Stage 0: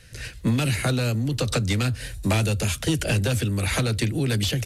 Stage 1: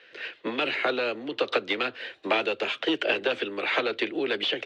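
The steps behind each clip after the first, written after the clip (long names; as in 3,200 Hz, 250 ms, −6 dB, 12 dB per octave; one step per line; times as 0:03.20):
Chebyshev band-pass filter 360–3,300 Hz, order 3
level +3 dB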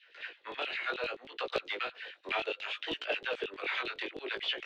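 auto-filter high-pass saw down 9.6 Hz 360–3,800 Hz
chorus effect 0.65 Hz, delay 16.5 ms, depth 6.3 ms
level −7 dB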